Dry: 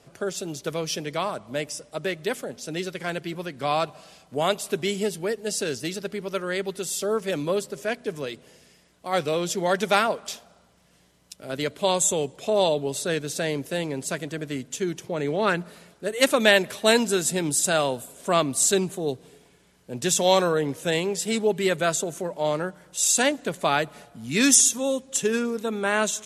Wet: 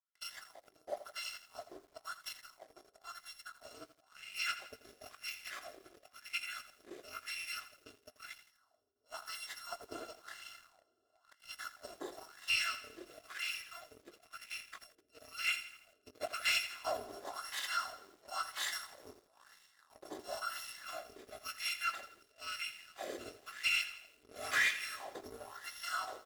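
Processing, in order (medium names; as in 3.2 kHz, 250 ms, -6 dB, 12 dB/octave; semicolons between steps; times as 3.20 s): bit-reversed sample order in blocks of 256 samples; doubling 20 ms -11 dB; echo that smears into a reverb 458 ms, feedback 55%, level -14.5 dB; LFO notch square 0.12 Hz 910–2400 Hz; gate with hold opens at -36 dBFS; wah-wah 0.98 Hz 380–2400 Hz, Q 4.8; de-hum 407.2 Hz, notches 6; waveshaping leveller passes 2; bit-crushed delay 83 ms, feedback 55%, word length 9-bit, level -12.5 dB; trim -3 dB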